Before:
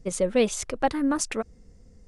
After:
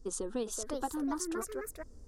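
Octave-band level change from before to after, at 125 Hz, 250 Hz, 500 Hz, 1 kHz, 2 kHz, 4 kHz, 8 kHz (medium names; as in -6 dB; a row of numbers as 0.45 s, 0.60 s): under -10 dB, -9.5 dB, -12.0 dB, -10.0 dB, -13.5 dB, -11.5 dB, -7.0 dB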